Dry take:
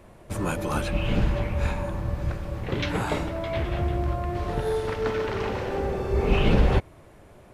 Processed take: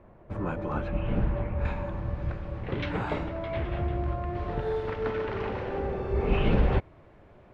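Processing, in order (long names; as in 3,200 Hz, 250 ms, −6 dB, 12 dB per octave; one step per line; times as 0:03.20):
low-pass filter 1,600 Hz 12 dB per octave, from 0:01.65 2,900 Hz
level −3.5 dB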